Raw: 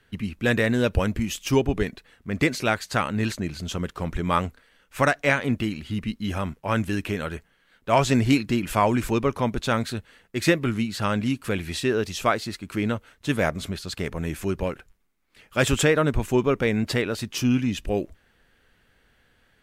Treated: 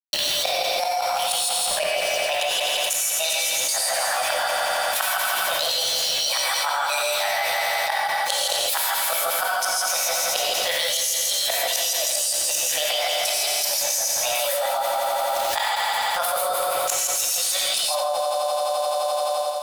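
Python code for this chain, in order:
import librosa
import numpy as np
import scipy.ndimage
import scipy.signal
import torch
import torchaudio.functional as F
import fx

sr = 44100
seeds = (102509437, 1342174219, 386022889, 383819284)

p1 = fx.pitch_heads(x, sr, semitones=6.5)
p2 = scipy.signal.sosfilt(scipy.signal.butter(16, 560.0, 'highpass', fs=sr, output='sos'), p1)
p3 = fx.peak_eq(p2, sr, hz=10000.0, db=8.5, octaves=1.3)
p4 = fx.notch(p3, sr, hz=2100.0, q=11.0)
p5 = fx.rider(p4, sr, range_db=4, speed_s=2.0)
p6 = p4 + F.gain(torch.from_numpy(p5), -0.5).numpy()
p7 = fx.gate_flip(p6, sr, shuts_db=-11.0, range_db=-35)
p8 = np.where(np.abs(p7) >= 10.0 ** (-39.5 / 20.0), p7, 0.0)
p9 = p8 + fx.echo_heads(p8, sr, ms=86, heads='first and second', feedback_pct=68, wet_db=-11.5, dry=0)
p10 = fx.rev_gated(p9, sr, seeds[0], gate_ms=180, shape='rising', drr_db=-6.5)
p11 = fx.env_flatten(p10, sr, amount_pct=100)
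y = F.gain(torch.from_numpy(p11), -13.5).numpy()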